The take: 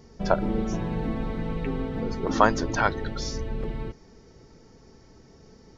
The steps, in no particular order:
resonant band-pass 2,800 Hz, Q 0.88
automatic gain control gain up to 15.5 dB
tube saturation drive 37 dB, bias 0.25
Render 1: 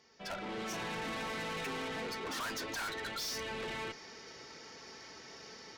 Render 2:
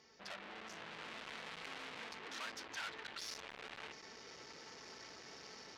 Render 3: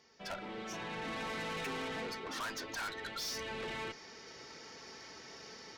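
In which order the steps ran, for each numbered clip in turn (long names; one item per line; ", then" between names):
resonant band-pass, then automatic gain control, then tube saturation
automatic gain control, then tube saturation, then resonant band-pass
automatic gain control, then resonant band-pass, then tube saturation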